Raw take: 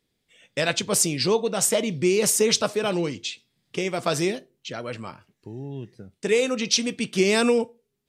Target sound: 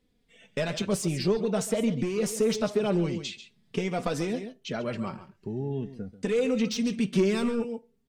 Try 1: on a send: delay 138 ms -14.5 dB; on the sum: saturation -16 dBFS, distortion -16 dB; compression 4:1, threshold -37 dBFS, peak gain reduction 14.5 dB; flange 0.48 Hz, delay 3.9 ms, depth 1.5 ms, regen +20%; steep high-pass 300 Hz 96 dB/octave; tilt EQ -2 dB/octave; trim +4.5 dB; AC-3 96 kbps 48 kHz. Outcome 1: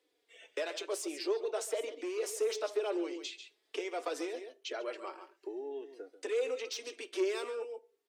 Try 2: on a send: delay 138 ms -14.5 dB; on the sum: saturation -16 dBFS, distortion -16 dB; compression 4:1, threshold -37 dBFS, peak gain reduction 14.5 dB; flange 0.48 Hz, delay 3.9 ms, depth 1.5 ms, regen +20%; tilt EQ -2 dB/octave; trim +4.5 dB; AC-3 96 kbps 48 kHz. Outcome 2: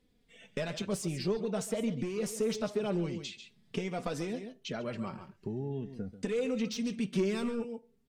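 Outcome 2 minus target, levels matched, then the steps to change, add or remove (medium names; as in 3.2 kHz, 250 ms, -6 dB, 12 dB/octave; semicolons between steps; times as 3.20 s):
compression: peak gain reduction +6.5 dB
change: compression 4:1, threshold -28.5 dBFS, peak gain reduction 8 dB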